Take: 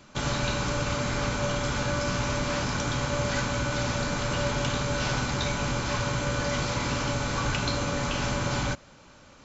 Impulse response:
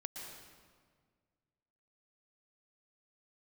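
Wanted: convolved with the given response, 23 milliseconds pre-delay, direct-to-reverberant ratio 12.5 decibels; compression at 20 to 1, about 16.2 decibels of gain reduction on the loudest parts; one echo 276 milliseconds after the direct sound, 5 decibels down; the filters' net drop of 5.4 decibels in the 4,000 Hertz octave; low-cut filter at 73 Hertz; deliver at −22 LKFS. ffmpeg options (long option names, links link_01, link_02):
-filter_complex "[0:a]highpass=73,equalizer=frequency=4000:width_type=o:gain=-7,acompressor=threshold=-41dB:ratio=20,aecho=1:1:276:0.562,asplit=2[link_01][link_02];[1:a]atrim=start_sample=2205,adelay=23[link_03];[link_02][link_03]afir=irnorm=-1:irlink=0,volume=-10.5dB[link_04];[link_01][link_04]amix=inputs=2:normalize=0,volume=21.5dB"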